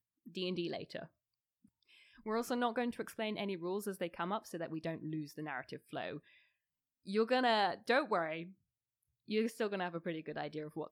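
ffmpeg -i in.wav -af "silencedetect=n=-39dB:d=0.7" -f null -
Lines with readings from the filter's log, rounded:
silence_start: 1.03
silence_end: 2.26 | silence_duration: 1.23
silence_start: 6.17
silence_end: 7.09 | silence_duration: 0.92
silence_start: 8.42
silence_end: 9.30 | silence_duration: 0.88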